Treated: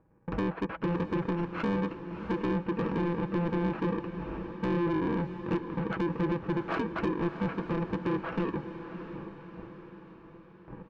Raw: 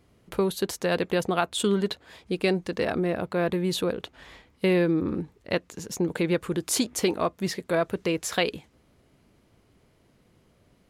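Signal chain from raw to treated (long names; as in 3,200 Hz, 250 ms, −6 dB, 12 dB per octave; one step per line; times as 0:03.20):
samples in bit-reversed order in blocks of 64 samples
inverse Chebyshev low-pass filter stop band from 9,200 Hz, stop band 80 dB
noise gate with hold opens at −53 dBFS
parametric band 450 Hz +6.5 dB 3 octaves
comb filter 6.1 ms, depth 42%
in parallel at −0.5 dB: brickwall limiter −21 dBFS, peak gain reduction 11.5 dB
on the sum: downward compressor 2.5 to 1, threshold −39 dBFS, peak gain reduction 17 dB
soft clipping −34 dBFS, distortion −10 dB
on a send: feedback delay with all-pass diffusion 667 ms, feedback 53%, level −10.5 dB
on the sum: level +9 dB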